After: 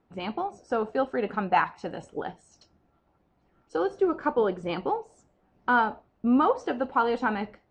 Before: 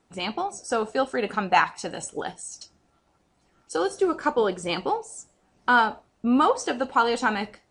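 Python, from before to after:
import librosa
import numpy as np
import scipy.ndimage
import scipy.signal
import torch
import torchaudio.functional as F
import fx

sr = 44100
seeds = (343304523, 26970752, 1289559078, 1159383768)

y = fx.spacing_loss(x, sr, db_at_10k=31)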